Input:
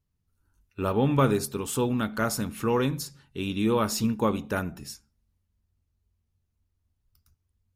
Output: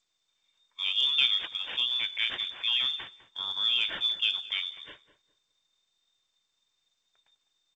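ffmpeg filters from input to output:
ffmpeg -i in.wav -filter_complex "[0:a]asoftclip=type=hard:threshold=-11dB,highpass=frequency=44:width=0.5412,highpass=frequency=44:width=1.3066,asettb=1/sr,asplit=3[link_01][link_02][link_03];[link_01]atrim=end=1.474[link_04];[link_02]atrim=start=1.47:end=2.69,asetpts=PTS-STARTPTS,afade=type=in:duration=0.004:curve=qsin,afade=type=out:start_time=1.216:duration=0.004:curve=qsin,equalizer=frequency=2000:width_type=o:width=0.75:gain=4[link_05];[link_03]atrim=start=2.686[link_06];[link_04][link_05]acrossfade=duration=0.004:curve1=hsin:curve2=qsin[link_07];[link_07][link_06]acrossfade=duration=0.004:curve1=qsin:curve2=hsin,acrusher=samples=5:mix=1:aa=0.000001,lowpass=frequency=3100:width_type=q:width=0.5098,lowpass=frequency=3100:width_type=q:width=0.6013,lowpass=frequency=3100:width_type=q:width=0.9,lowpass=frequency=3100:width_type=q:width=2.563,afreqshift=-3700,bandreject=frequency=1200:width=19,asplit=2[link_08][link_09];[link_09]adelay=203,lowpass=frequency=1200:poles=1,volume=-13dB,asplit=2[link_10][link_11];[link_11]adelay=203,lowpass=frequency=1200:poles=1,volume=0.26,asplit=2[link_12][link_13];[link_13]adelay=203,lowpass=frequency=1200:poles=1,volume=0.26[link_14];[link_08][link_10][link_12][link_14]amix=inputs=4:normalize=0,volume=-3.5dB" -ar 16000 -c:a g722 out.g722

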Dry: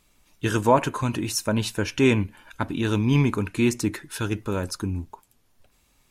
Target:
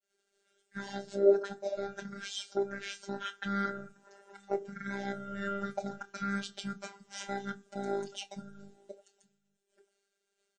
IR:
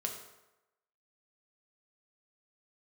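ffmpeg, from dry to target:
-filter_complex "[0:a]agate=range=-33dB:threshold=-56dB:ratio=3:detection=peak,aemphasis=mode=production:type=50fm,dynaudnorm=framelen=230:gausssize=11:maxgain=11.5dB,asplit=2[link_01][link_02];[link_02]alimiter=limit=-14dB:level=0:latency=1:release=298,volume=1dB[link_03];[link_01][link_03]amix=inputs=2:normalize=0,aexciter=amount=2.1:drive=6.5:freq=4600,asplit=3[link_04][link_05][link_06];[link_04]bandpass=frequency=730:width_type=q:width=8,volume=0dB[link_07];[link_05]bandpass=frequency=1090:width_type=q:width=8,volume=-6dB[link_08];[link_06]bandpass=frequency=2440:width_type=q:width=8,volume=-9dB[link_09];[link_07][link_08][link_09]amix=inputs=3:normalize=0,afftfilt=real='hypot(re,im)*cos(PI*b)':imag='0':win_size=512:overlap=0.75,asplit=2[link_10][link_11];[link_11]adelay=16,volume=-13dB[link_12];[link_10][link_12]amix=inputs=2:normalize=0,asplit=2[link_13][link_14];[link_14]adelay=501.5,volume=-29dB,highshelf=frequency=4000:gain=-11.3[link_15];[link_13][link_15]amix=inputs=2:normalize=0,asetrate=25442,aresample=44100"

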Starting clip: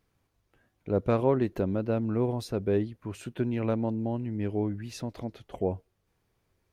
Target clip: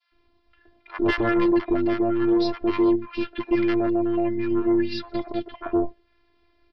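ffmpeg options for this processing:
ffmpeg -i in.wav -filter_complex "[0:a]adynamicequalizer=threshold=0.00562:dfrequency=1700:dqfactor=0.97:tfrequency=1700:tqfactor=0.97:attack=5:release=100:ratio=0.375:range=2.5:mode=boostabove:tftype=bell,afftfilt=real='hypot(re,im)*cos(PI*b)':imag='0':win_size=512:overlap=0.75,aresample=11025,aeval=exprs='0.188*sin(PI/2*3.16*val(0)/0.188)':channel_layout=same,aresample=44100,acontrast=83,acrossover=split=1000[link_01][link_02];[link_01]adelay=120[link_03];[link_03][link_02]amix=inputs=2:normalize=0,volume=-6.5dB" out.wav

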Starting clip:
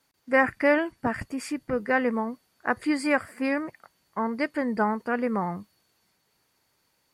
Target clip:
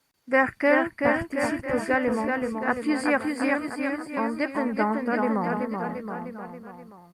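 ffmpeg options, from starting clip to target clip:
ffmpeg -i in.wav -af "aecho=1:1:380|722|1030|1307|1556:0.631|0.398|0.251|0.158|0.1" -ar 48000 -c:a libopus -b:a 48k out.opus

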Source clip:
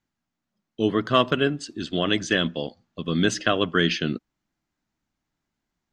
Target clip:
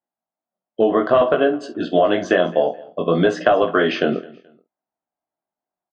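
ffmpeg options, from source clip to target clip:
ffmpeg -i in.wav -filter_complex "[0:a]afftdn=noise_reduction=19:noise_floor=-48,asplit=2[link_01][link_02];[link_02]adelay=48,volume=-13.5dB[link_03];[link_01][link_03]amix=inputs=2:normalize=0,flanger=delay=16.5:depth=6.3:speed=0.58,bandpass=frequency=680:width_type=q:width=3.2:csg=0,apsyclip=26.5dB,acompressor=threshold=-12dB:ratio=6,aecho=1:1:214|428:0.0794|0.0238" out.wav

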